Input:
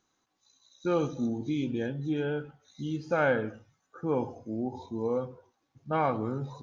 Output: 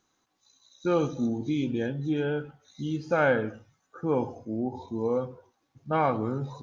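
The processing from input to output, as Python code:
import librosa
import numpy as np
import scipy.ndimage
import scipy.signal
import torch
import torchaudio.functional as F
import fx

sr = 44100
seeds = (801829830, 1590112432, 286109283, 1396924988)

y = fx.high_shelf(x, sr, hz=3600.0, db=-6.5, at=(4.45, 4.88))
y = y * librosa.db_to_amplitude(2.5)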